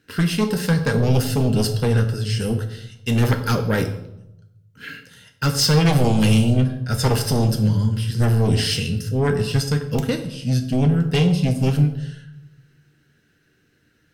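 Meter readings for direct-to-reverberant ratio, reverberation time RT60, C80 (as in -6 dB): 5.5 dB, 0.85 s, 13.0 dB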